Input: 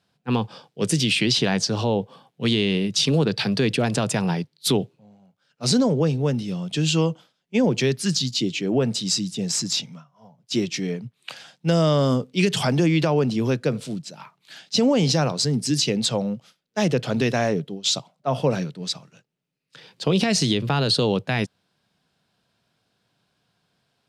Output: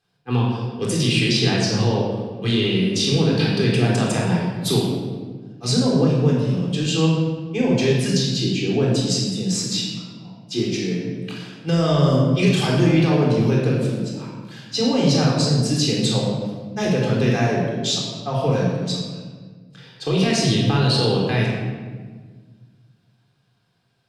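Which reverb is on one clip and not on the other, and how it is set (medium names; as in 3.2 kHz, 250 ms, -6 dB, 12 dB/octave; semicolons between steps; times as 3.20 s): simulated room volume 1500 m³, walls mixed, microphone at 3.8 m; trim -5.5 dB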